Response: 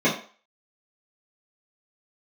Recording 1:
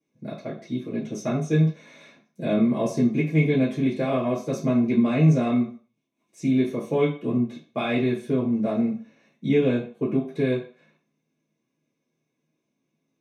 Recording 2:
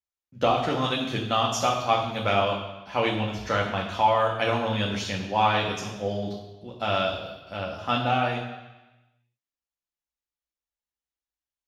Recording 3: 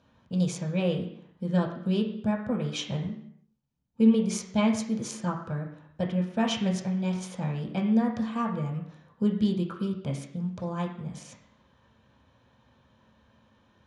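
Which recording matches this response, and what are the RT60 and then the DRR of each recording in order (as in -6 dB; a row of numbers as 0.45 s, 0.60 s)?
1; 0.40 s, 1.1 s, 0.70 s; -10.0 dB, -2.0 dB, -0.5 dB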